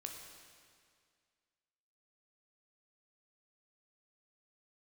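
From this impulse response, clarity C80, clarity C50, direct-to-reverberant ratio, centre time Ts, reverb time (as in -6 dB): 5.0 dB, 4.0 dB, 2.0 dB, 61 ms, 2.1 s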